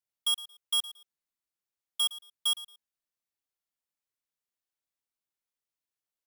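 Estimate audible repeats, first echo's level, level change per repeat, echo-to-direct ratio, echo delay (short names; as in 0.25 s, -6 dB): 2, -16.5 dB, -13.5 dB, -16.5 dB, 0.113 s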